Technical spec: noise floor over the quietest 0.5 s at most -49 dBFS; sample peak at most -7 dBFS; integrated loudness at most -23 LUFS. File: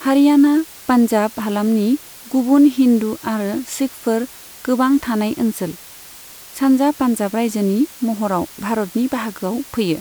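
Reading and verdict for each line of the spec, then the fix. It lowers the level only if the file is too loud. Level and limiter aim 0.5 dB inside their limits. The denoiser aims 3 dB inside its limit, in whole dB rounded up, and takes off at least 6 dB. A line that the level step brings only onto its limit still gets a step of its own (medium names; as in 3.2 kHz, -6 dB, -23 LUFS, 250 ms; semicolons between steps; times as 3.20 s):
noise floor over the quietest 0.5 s -39 dBFS: fail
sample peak -4.0 dBFS: fail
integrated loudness -18.0 LUFS: fail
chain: noise reduction 8 dB, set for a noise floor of -39 dBFS; trim -5.5 dB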